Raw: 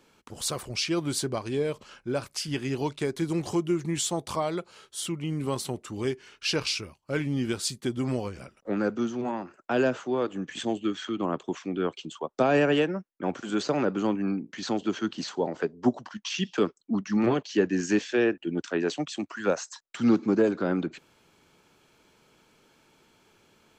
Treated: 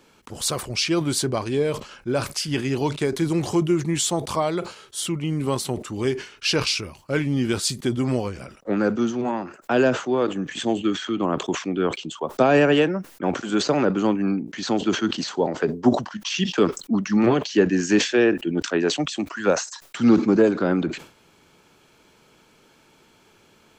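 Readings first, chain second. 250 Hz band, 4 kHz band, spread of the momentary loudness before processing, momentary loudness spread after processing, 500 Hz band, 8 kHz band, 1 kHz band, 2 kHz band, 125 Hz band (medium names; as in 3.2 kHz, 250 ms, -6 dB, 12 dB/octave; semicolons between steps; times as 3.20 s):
+6.0 dB, +6.5 dB, 9 LU, 9 LU, +6.0 dB, +6.5 dB, +6.0 dB, +6.0 dB, +6.5 dB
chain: decay stretcher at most 130 dB/s; trim +5.5 dB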